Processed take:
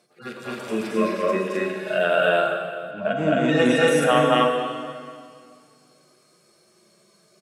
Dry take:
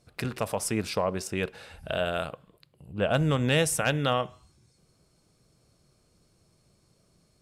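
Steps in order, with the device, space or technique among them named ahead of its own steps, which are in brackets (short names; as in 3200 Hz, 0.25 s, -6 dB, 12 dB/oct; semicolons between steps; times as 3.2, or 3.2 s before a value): median-filter separation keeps harmonic; stadium PA (HPF 230 Hz 24 dB/oct; bell 1700 Hz +4 dB 1 oct; loudspeakers at several distances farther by 75 m 0 dB, 89 m -1 dB; reverb RT60 2.2 s, pre-delay 3 ms, DRR 3 dB); 2.91–3.88 LPF 6600 Hz 12 dB/oct; gain +6.5 dB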